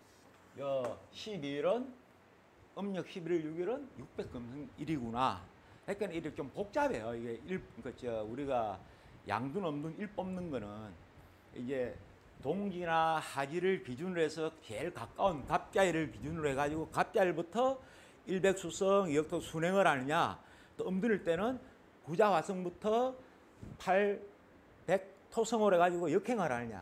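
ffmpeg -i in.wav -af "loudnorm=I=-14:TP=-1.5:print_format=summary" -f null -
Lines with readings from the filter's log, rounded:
Input Integrated:    -35.2 LUFS
Input True Peak:     -13.7 dBTP
Input LRA:             6.4 LU
Input Threshold:     -46.0 LUFS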